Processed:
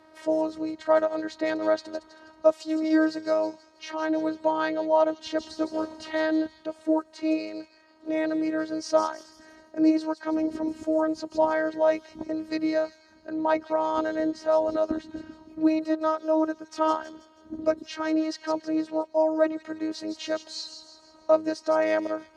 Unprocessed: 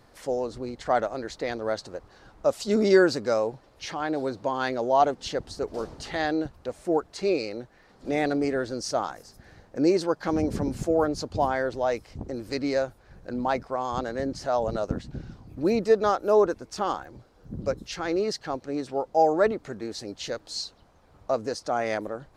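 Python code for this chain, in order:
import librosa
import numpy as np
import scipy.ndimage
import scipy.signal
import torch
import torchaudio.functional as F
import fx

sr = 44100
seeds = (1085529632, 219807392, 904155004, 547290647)

y = fx.robotise(x, sr, hz=315.0)
y = fx.tilt_eq(y, sr, slope=-3.5)
y = fx.echo_wet_highpass(y, sr, ms=161, feedback_pct=44, hz=4200.0, wet_db=-6)
y = fx.rider(y, sr, range_db=4, speed_s=0.5)
y = fx.weighting(y, sr, curve='A')
y = y * 10.0 ** (3.0 / 20.0)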